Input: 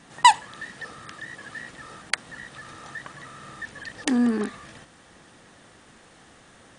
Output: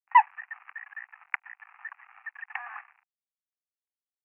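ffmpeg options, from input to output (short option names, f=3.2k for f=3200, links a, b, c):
-af "atempo=1.6,acrusher=bits=5:mix=0:aa=0.5,asuperpass=centerf=1400:order=20:qfactor=0.75,volume=-2dB"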